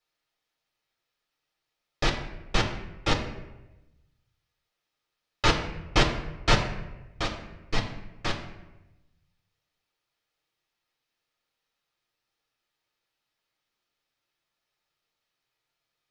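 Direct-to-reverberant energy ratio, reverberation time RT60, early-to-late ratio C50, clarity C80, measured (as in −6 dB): 1.0 dB, 1.0 s, 8.0 dB, 10.0 dB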